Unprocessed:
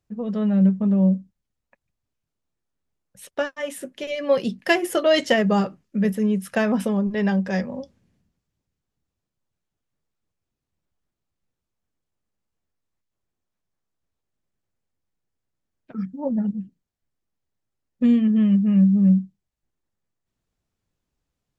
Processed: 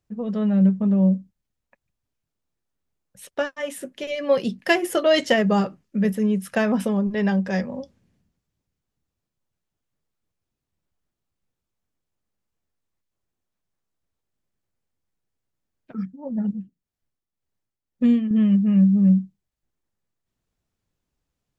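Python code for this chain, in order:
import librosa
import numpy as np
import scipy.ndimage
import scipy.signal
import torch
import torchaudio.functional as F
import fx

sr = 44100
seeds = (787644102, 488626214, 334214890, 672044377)

y = fx.tremolo(x, sr, hz=1.9, depth=0.63, at=(15.96, 18.31))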